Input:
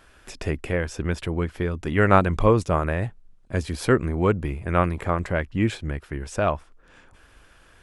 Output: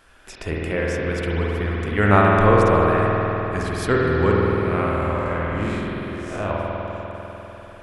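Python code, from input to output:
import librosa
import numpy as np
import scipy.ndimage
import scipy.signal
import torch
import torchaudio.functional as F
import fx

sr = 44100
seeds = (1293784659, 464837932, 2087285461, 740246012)

y = fx.spec_blur(x, sr, span_ms=177.0, at=(4.34, 6.51))
y = fx.low_shelf(y, sr, hz=410.0, db=-3.5)
y = fx.rev_spring(y, sr, rt60_s=4.0, pass_ms=(49,), chirp_ms=30, drr_db=-4.5)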